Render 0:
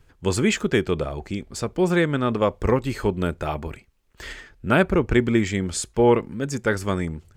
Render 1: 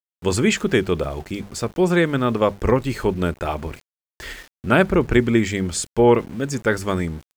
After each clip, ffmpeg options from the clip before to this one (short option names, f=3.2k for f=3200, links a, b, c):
-af "bandreject=f=50:t=h:w=6,bandreject=f=100:t=h:w=6,bandreject=f=150:t=h:w=6,bandreject=f=200:t=h:w=6,aeval=exprs='val(0)*gte(abs(val(0)),0.00794)':c=same,volume=2.5dB"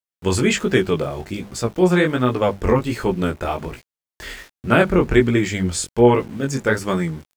-af "flanger=delay=15.5:depth=6.9:speed=1.3,volume=4dB"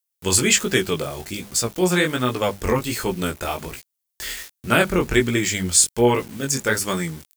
-af "crystalizer=i=5:c=0,volume=-4.5dB"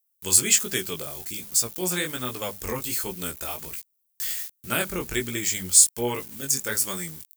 -af "aemphasis=mode=production:type=75kf,volume=-11dB"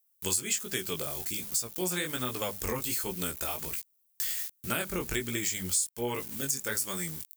-af "acompressor=threshold=-31dB:ratio=4,volume=2dB"